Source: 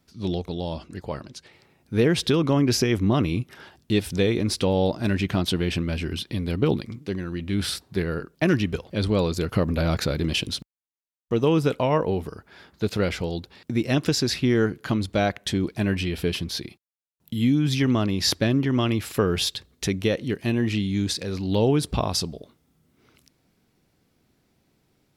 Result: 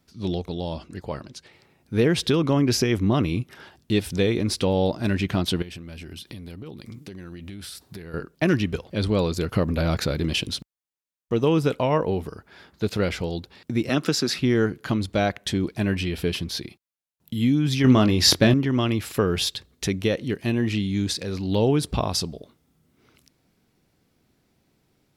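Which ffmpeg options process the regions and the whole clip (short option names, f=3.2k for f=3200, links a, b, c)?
-filter_complex "[0:a]asettb=1/sr,asplit=3[a][b][c];[a]atrim=end=5.624[d];[b]atrim=start=5.62:end=8.14,asetpts=PTS-STARTPTS,afade=t=in:d=0.004:c=qsin,afade=t=out:st=2.516:d=0.004:c=qsin,highshelf=f=6.6k:g=9.5,acompressor=threshold=-34dB:ratio=16:attack=3.2:release=140:knee=1:detection=peak[e];[c]atrim=start=8.136[f];[d][e]acrossfade=d=0.004:c1=hsin:c2=qsin[g];[g][f]acrossfade=d=0.004:c1=qsin:c2=hsin,asettb=1/sr,asplit=3[h][i][j];[h]atrim=end=13.894[k];[i]atrim=start=13.89:end=14.39,asetpts=PTS-STARTPTS,afade=t=in:d=0.004:c=qsin,afade=t=out:st=0.496:d=0.004:c=qsin,highpass=f=150:w=0.5412,highpass=f=150:w=1.3066,equalizer=f=1.3k:t=o:w=0.23:g=9.5[l];[j]atrim=start=14.386[m];[k][l]acrossfade=d=0.004:c1=hsin:c2=qsin[n];[n][m]acrossfade=d=0.004:c1=qsin:c2=hsin,asettb=1/sr,asplit=3[o][p][q];[o]atrim=end=17.844[r];[p]atrim=start=17.84:end=18.54,asetpts=PTS-STARTPTS,afade=t=in:d=0.004:c=qsin,afade=t=out:st=0.696:d=0.004:c=qsin,acontrast=34,asplit=2[s][t];[t]adelay=23,volume=-9.5dB[u];[s][u]amix=inputs=2:normalize=0,atrim=end_sample=30870[v];[q]atrim=start=18.536[w];[r][v]acrossfade=d=0.004:c1=hsin:c2=qsin[x];[x][w]acrossfade=d=0.004:c1=qsin:c2=hsin"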